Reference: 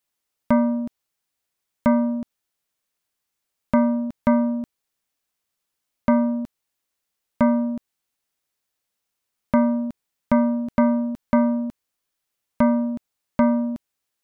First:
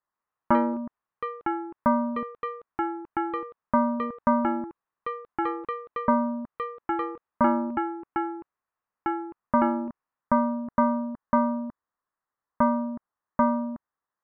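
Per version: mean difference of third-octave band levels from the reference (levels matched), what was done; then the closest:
3.5 dB: elliptic low-pass filter 1,900 Hz, stop band 40 dB
delay with pitch and tempo change per echo 148 ms, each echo +6 semitones, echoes 2, each echo −6 dB
parametric band 1,100 Hz +11.5 dB 0.78 octaves
level −6 dB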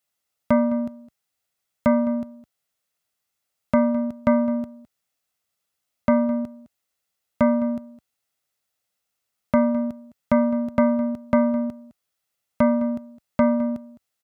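1.5 dB: high-pass filter 57 Hz
comb filter 1.5 ms, depth 31%
single-tap delay 210 ms −17.5 dB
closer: second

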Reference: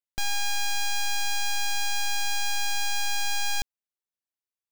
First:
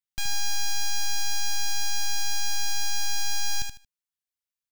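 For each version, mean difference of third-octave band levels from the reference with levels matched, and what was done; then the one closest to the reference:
3.5 dB: parametric band 490 Hz −13.5 dB 1.7 octaves
repeating echo 76 ms, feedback 22%, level −6 dB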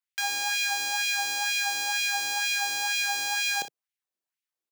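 6.0 dB: parametric band 150 Hz +9.5 dB 1.3 octaves
auto-filter high-pass sine 2.1 Hz 300–2,500 Hz
ambience of single reflections 30 ms −12.5 dB, 61 ms −13 dB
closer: first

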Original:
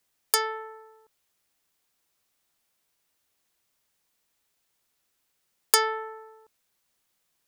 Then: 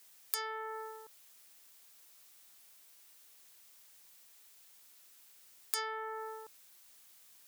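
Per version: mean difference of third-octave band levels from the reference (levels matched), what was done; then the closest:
9.0 dB: spectral tilt +2 dB per octave
brickwall limiter −6.5 dBFS, peak gain reduction 11.5 dB
downward compressor 6 to 1, threshold −43 dBFS, peak gain reduction 22.5 dB
level +8 dB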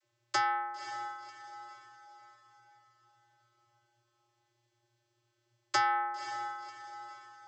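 13.5 dB: downward compressor 2.5 to 1, threshold −25 dBFS, peak gain reduction 8 dB
channel vocoder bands 32, square 118 Hz
feedback delay with all-pass diffusion 543 ms, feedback 44%, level −10 dB
level +2.5 dB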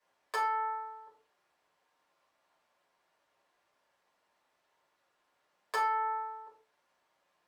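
6.0 dB: downward compressor 3 to 1, threshold −34 dBFS, peak gain reduction 15 dB
resonant band-pass 850 Hz, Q 0.93
rectangular room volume 190 cubic metres, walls furnished, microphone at 5.6 metres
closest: third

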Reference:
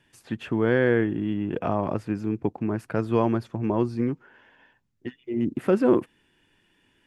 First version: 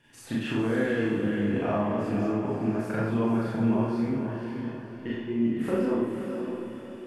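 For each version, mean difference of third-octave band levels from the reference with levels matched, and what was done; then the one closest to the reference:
8.0 dB: downward compressor, threshold −30 dBFS, peak gain reduction 14.5 dB
on a send: feedback delay with all-pass diffusion 530 ms, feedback 41%, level −6 dB
on the sum: four-comb reverb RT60 0.75 s, combs from 27 ms, DRR −7 dB
level −1 dB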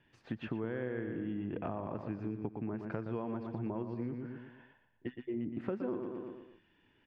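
5.0 dB: high-frequency loss of the air 230 metres
repeating echo 118 ms, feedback 43%, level −8 dB
downward compressor 6 to 1, threshold −31 dBFS, peak gain reduction 15.5 dB
level −3.5 dB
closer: second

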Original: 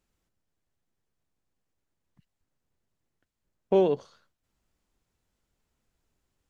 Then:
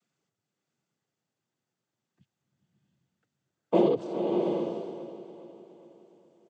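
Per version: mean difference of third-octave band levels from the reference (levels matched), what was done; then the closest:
5.0 dB: cochlear-implant simulation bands 16
repeating echo 413 ms, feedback 51%, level −14 dB
slow-attack reverb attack 700 ms, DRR 2.5 dB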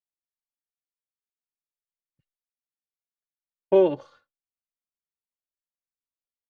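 2.5 dB: downward expander −52 dBFS
bass and treble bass −8 dB, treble −12 dB
barber-pole flanger 2.7 ms −0.58 Hz
level +7 dB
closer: second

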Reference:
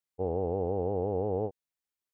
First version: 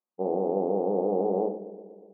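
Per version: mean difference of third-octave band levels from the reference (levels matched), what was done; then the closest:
4.0 dB: linear-phase brick-wall band-pass 180–1,300 Hz
on a send: delay with a low-pass on its return 121 ms, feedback 68%, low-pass 820 Hz, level −14 dB
on the sum: rectangular room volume 340 cubic metres, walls furnished, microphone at 0.97 metres
level +4 dB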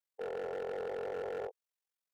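12.0 dB: Chebyshev high-pass filter 450 Hz, order 4
ring modulation 22 Hz
hard clipping −36.5 dBFS, distortion −8 dB
level +1 dB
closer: first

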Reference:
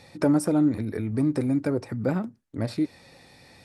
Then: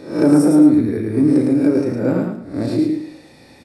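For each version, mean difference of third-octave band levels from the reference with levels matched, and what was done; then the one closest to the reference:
5.5 dB: peak hold with a rise ahead of every peak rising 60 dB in 0.51 s
parametric band 310 Hz +9 dB 1.1 octaves
double-tracking delay 34 ms −7 dB
repeating echo 109 ms, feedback 29%, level −3.5 dB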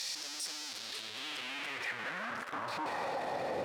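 19.0 dB: sign of each sample alone
band-pass filter sweep 5,200 Hz → 550 Hz, 0:00.66–0:03.58
brickwall limiter −35 dBFS, peak gain reduction 10.5 dB
echo through a band-pass that steps 136 ms, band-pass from 520 Hz, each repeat 1.4 octaves, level −5 dB
level +5.5 dB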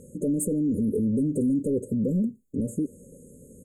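9.0 dB: brickwall limiter −21 dBFS, peak gain reduction 9.5 dB
comb filter 4.6 ms, depth 50%
soft clipping −26 dBFS, distortion −14 dB
linear-phase brick-wall band-stop 590–6,400 Hz
level +7 dB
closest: first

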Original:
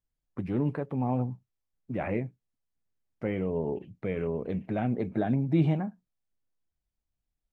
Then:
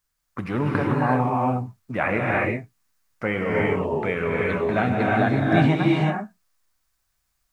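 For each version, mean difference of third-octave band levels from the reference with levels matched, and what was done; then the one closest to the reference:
9.5 dB: drawn EQ curve 360 Hz 0 dB, 820 Hz +7 dB, 1,200 Hz +15 dB, 3,100 Hz +9 dB, 4,700 Hz +13 dB
reverb whose tail is shaped and stops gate 390 ms rising, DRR −2.5 dB
level +2.5 dB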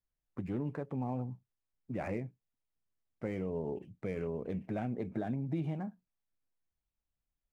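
2.0 dB: running median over 9 samples
downward compressor, threshold −27 dBFS, peak gain reduction 8.5 dB
level −4.5 dB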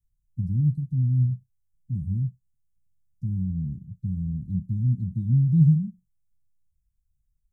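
13.5 dB: inverse Chebyshev band-stop filter 460–2,400 Hz, stop band 60 dB
low-shelf EQ 420 Hz +10.5 dB
level +2 dB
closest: second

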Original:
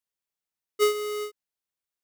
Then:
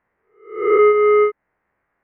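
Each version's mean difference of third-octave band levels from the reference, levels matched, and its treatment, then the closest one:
10.5 dB: peak hold with a rise ahead of every peak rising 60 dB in 0.46 s
elliptic low-pass filter 2,000 Hz, stop band 60 dB
downward compressor 2 to 1, threshold −44 dBFS, peak gain reduction 13 dB
boost into a limiter +32.5 dB
level −6 dB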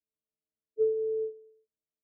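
16.5 dB: every partial snapped to a pitch grid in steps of 6 semitones
Butterworth low-pass 580 Hz 72 dB per octave
downward compressor, threshold −25 dBFS, peak gain reduction 5.5 dB
on a send: repeating echo 114 ms, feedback 47%, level −21 dB
on the sum: level +2 dB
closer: first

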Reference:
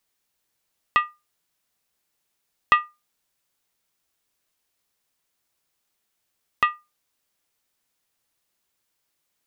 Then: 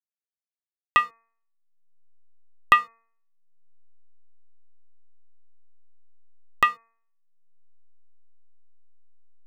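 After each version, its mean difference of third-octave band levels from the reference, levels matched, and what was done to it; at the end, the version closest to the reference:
3.0 dB: slack as between gear wheels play −40.5 dBFS
upward compression, threshold −26 dBFS
hum removal 228.3 Hz, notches 11
level +1.5 dB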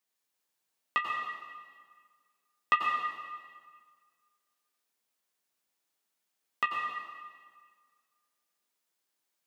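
9.5 dB: high-pass filter 180 Hz 12 dB per octave
flanger 0.66 Hz, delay 9.6 ms, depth 7.1 ms, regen +37%
dense smooth reverb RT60 1.7 s, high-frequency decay 0.85×, pre-delay 80 ms, DRR 0.5 dB
level −4.5 dB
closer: first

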